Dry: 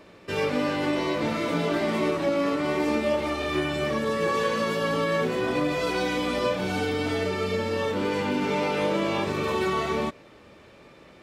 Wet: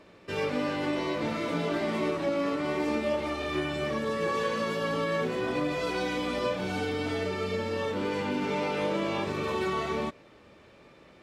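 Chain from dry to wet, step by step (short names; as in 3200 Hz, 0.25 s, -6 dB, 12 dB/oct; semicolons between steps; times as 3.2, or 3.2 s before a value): high shelf 12000 Hz -7.5 dB; gain -4 dB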